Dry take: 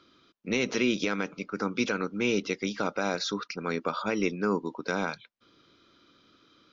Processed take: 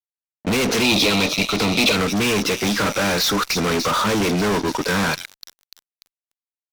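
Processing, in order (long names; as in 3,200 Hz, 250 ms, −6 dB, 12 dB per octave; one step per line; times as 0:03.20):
delay with a high-pass on its return 294 ms, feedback 71%, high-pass 4,900 Hz, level −9 dB
noise reduction from a noise print of the clip's start 16 dB
fuzz pedal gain 43 dB, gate −50 dBFS
0:00.82–0:01.96: thirty-one-band graphic EQ 630 Hz +6 dB, 1,600 Hz −10 dB, 2,500 Hz +8 dB, 4,000 Hz +11 dB
level −4.5 dB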